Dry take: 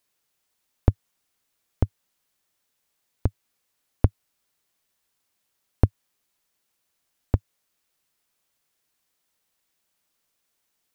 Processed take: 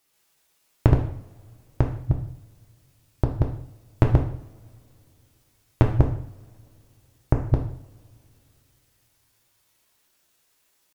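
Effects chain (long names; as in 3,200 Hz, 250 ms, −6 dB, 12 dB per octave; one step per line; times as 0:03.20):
delay that plays each chunk backwards 152 ms, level 0 dB
in parallel at −1 dB: downward compressor 10 to 1, threshold −24 dBFS, peak gain reduction 14.5 dB
on the sum: pitch shifter +2.5 semitones
coupled-rooms reverb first 0.59 s, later 3.1 s, from −26 dB, DRR 1.5 dB
level −1 dB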